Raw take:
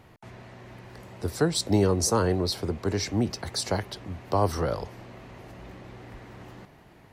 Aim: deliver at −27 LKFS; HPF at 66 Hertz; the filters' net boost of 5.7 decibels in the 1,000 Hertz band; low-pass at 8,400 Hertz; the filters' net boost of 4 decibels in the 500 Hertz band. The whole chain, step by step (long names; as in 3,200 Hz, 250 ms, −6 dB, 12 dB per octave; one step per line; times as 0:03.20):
high-pass filter 66 Hz
low-pass filter 8,400 Hz
parametric band 500 Hz +3.5 dB
parametric band 1,000 Hz +6 dB
level −2.5 dB